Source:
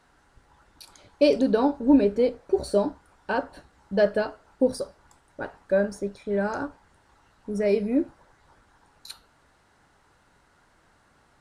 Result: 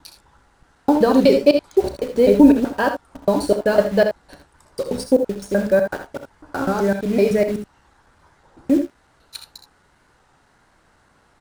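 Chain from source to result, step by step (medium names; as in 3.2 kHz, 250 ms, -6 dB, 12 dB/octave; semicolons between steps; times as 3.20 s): slices played last to first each 126 ms, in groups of 7; in parallel at -6 dB: bit crusher 6-bit; on the sum: early reflections 34 ms -15 dB, 66 ms -10.5 dB, 80 ms -10.5 dB; warped record 33 1/3 rpm, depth 100 cents; trim +3 dB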